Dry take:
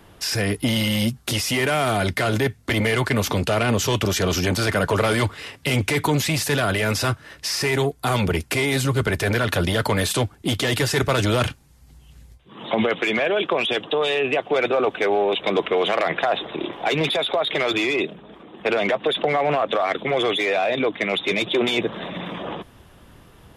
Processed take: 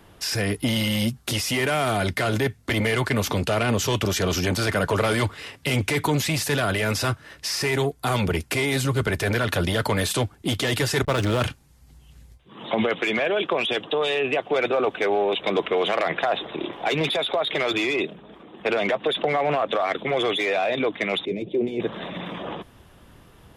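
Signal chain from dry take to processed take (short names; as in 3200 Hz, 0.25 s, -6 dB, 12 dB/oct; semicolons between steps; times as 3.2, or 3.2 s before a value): 11.02–11.42 backlash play -23 dBFS; 21.25–21.8 EQ curve 440 Hz 0 dB, 1300 Hz -28 dB, 2300 Hz -16 dB, 3500 Hz -22 dB; gain -2 dB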